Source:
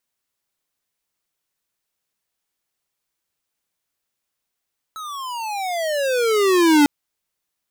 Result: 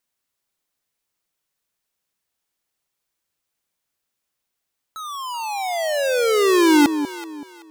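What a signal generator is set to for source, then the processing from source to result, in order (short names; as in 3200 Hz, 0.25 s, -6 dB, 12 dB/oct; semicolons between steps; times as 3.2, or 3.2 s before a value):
gliding synth tone square, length 1.90 s, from 1310 Hz, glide -26.5 st, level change +20 dB, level -12 dB
echo with dull and thin repeats by turns 0.19 s, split 830 Hz, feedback 52%, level -8.5 dB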